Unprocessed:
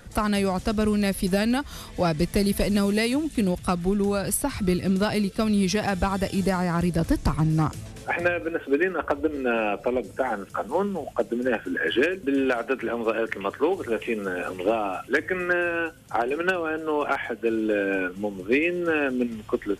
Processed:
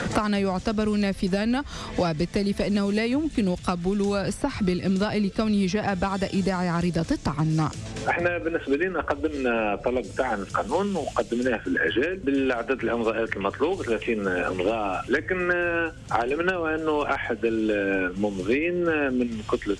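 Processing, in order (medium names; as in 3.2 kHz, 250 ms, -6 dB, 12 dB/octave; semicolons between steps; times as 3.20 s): low-pass 7.9 kHz 24 dB/octave; three bands compressed up and down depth 100%; trim -1 dB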